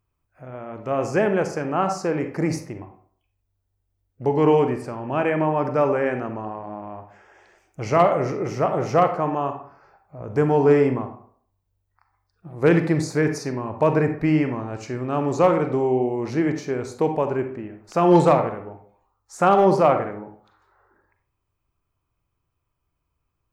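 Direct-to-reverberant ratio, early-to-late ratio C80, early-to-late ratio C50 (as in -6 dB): 6.5 dB, 12.5 dB, 8.5 dB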